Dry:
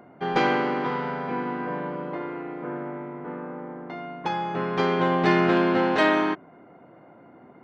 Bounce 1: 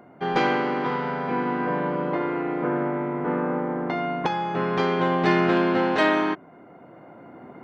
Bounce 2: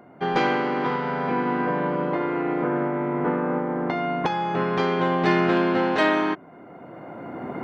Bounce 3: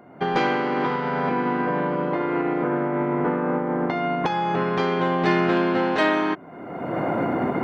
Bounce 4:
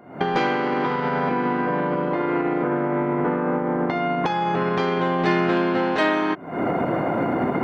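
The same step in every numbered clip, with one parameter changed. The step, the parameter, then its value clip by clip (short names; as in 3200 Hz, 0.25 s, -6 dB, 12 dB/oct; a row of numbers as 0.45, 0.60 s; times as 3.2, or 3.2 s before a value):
recorder AGC, rising by: 5.2, 14, 36, 90 dB/s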